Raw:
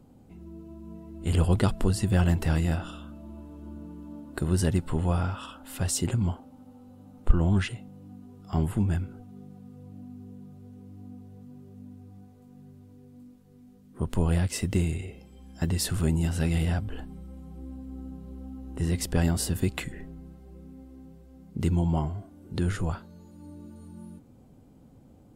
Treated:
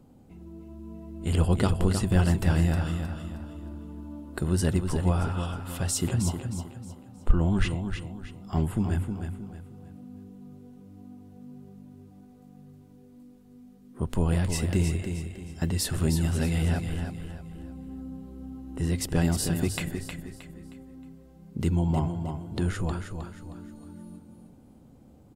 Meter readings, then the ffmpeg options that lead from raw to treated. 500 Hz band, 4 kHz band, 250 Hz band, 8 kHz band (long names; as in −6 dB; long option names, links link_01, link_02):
+1.0 dB, +1.0 dB, +1.0 dB, +1.0 dB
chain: -af "bandreject=frequency=50:width_type=h:width=6,bandreject=frequency=100:width_type=h:width=6,aecho=1:1:313|626|939|1252:0.447|0.161|0.0579|0.0208"